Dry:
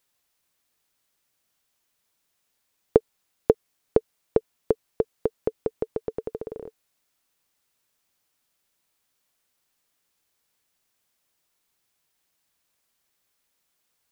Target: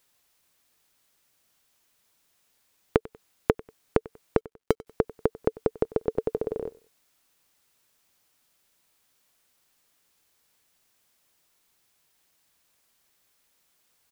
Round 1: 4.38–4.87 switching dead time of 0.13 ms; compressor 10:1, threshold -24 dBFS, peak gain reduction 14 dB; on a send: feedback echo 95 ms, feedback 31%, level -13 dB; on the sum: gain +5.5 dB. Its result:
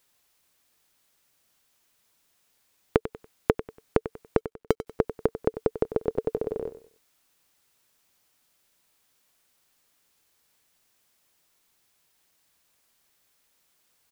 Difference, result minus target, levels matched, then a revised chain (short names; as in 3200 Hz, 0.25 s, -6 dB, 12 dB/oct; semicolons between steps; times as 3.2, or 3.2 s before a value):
echo-to-direct +8.5 dB
4.38–4.87 switching dead time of 0.13 ms; compressor 10:1, threshold -24 dBFS, peak gain reduction 14 dB; on a send: feedback echo 95 ms, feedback 31%, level -21.5 dB; on the sum: gain +5.5 dB